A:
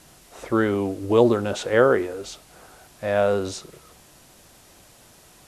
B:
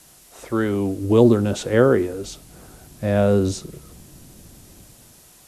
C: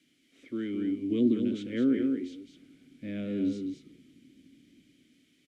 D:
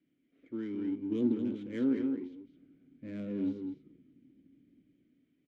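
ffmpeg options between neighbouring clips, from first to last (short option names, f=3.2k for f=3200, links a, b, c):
-filter_complex "[0:a]aemphasis=mode=production:type=cd,acrossover=split=330|1600[a][b][c];[a]dynaudnorm=f=230:g=7:m=16dB[d];[d][b][c]amix=inputs=3:normalize=0,volume=-3dB"
-filter_complex "[0:a]asplit=3[a][b][c];[a]bandpass=f=270:t=q:w=8,volume=0dB[d];[b]bandpass=f=2.29k:t=q:w=8,volume=-6dB[e];[c]bandpass=f=3.01k:t=q:w=8,volume=-9dB[f];[d][e][f]amix=inputs=3:normalize=0,aecho=1:1:213:0.501"
-af "adynamicsmooth=sensitivity=6.5:basefreq=1.3k,flanger=delay=5.7:depth=1.8:regen=-72:speed=1.8:shape=triangular"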